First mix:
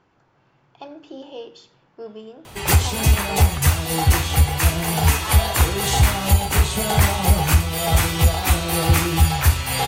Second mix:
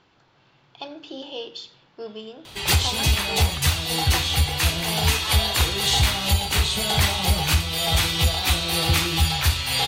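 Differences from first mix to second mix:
background -5.5 dB; master: add bell 3800 Hz +12.5 dB 1.2 oct

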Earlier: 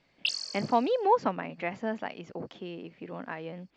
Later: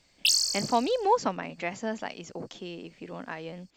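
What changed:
background: remove HPF 240 Hz 12 dB/oct; master: remove LPF 2700 Hz 12 dB/oct

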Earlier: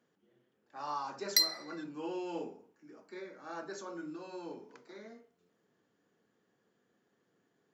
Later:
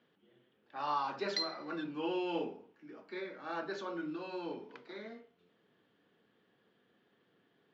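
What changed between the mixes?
speech +12.0 dB; master: add ladder low-pass 4000 Hz, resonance 45%

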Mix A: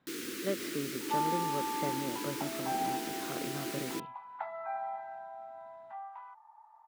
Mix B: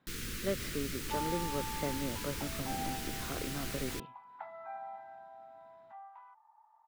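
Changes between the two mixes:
first sound: remove resonant high-pass 320 Hz, resonance Q 4; second sound -6.5 dB

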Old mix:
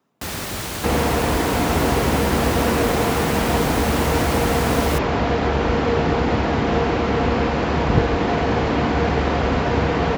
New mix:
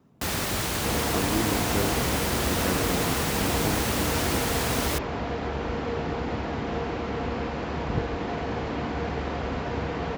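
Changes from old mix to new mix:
speech: remove HPF 860 Hz 6 dB/oct; second sound -10.5 dB

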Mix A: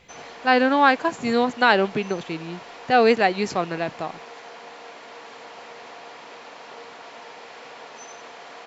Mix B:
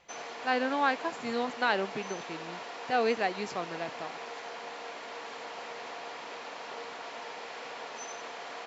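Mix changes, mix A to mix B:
speech -10.5 dB; master: add low shelf 150 Hz -7 dB

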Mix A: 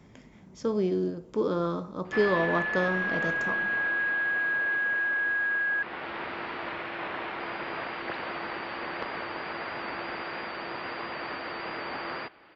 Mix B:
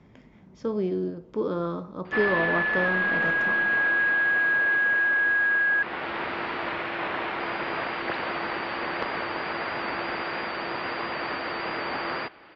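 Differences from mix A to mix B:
speech: add air absorption 150 m; background +5.0 dB

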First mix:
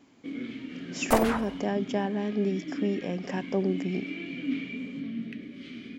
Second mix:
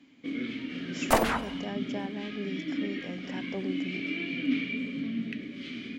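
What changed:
speech -9.0 dB; first sound: send on; master: add bell 3100 Hz +4 dB 2.4 oct

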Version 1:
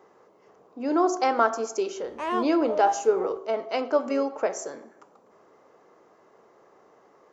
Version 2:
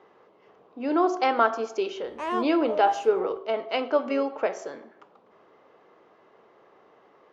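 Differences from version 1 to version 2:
speech: add synth low-pass 3300 Hz, resonance Q 2; reverb: off

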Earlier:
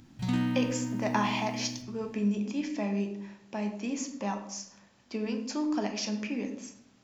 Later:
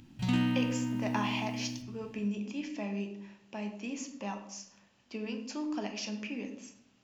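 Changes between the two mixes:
speech -5.5 dB; master: add bell 2800 Hz +7.5 dB 0.35 oct

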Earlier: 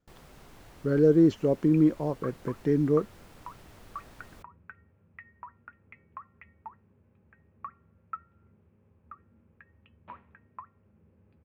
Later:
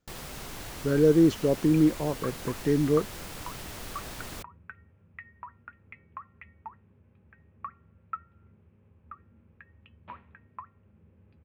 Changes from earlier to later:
first sound +10.0 dB; second sound: add low shelf 140 Hz +6.5 dB; master: add high shelf 2400 Hz +8.5 dB

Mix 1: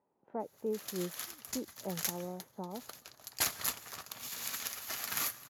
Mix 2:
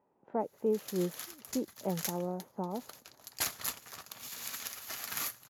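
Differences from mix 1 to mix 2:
speech +5.5 dB; background: send -11.5 dB

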